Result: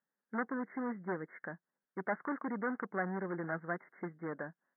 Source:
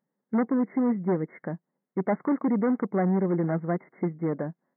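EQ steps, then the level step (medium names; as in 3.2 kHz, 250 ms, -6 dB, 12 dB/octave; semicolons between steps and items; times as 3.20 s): band-pass filter 1.6 kHz, Q 4.1; distance through air 300 m; tilt EQ -3 dB/octave; +8.0 dB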